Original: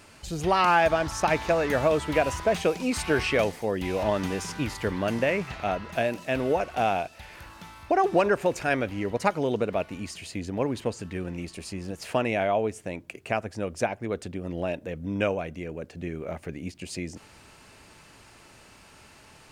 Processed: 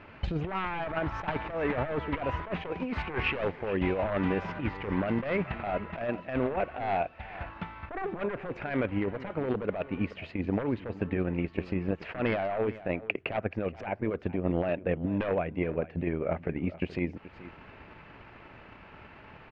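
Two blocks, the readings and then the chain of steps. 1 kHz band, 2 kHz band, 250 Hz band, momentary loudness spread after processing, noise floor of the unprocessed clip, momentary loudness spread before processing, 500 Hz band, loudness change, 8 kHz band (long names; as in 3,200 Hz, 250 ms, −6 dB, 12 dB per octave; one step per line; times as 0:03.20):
−7.5 dB, −5.0 dB, −1.0 dB, 18 LU, −53 dBFS, 14 LU, −5.5 dB, −4.5 dB, below −30 dB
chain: wavefolder on the positive side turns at −20.5 dBFS
transient designer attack +10 dB, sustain −5 dB
low-pass filter 2,600 Hz 24 dB per octave
compressor whose output falls as the input rises −29 dBFS, ratio −1
single-tap delay 428 ms −16.5 dB
level −1.5 dB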